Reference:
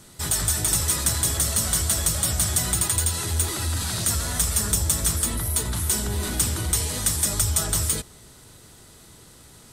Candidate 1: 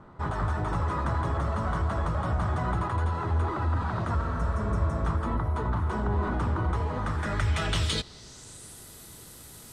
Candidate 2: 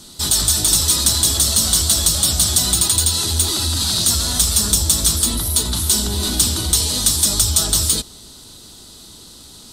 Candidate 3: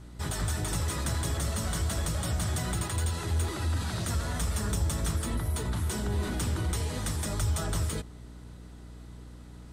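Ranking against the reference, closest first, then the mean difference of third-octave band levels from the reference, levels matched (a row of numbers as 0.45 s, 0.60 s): 2, 3, 1; 3.5 dB, 5.5 dB, 12.0 dB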